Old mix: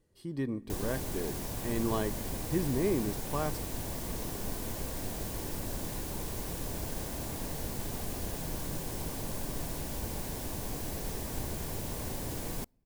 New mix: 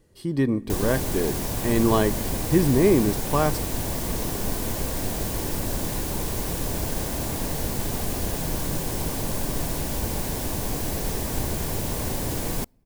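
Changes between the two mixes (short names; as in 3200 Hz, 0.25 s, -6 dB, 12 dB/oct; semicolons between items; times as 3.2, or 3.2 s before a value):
speech +11.5 dB; background +9.5 dB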